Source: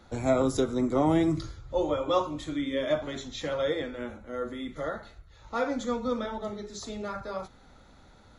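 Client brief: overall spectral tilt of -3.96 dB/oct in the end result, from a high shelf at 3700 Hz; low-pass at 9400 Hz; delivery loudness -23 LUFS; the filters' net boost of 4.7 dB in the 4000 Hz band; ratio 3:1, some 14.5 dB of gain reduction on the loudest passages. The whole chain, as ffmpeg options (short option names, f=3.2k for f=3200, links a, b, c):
-af "lowpass=9.4k,highshelf=f=3.7k:g=-5,equalizer=f=4k:t=o:g=8.5,acompressor=threshold=-40dB:ratio=3,volume=18dB"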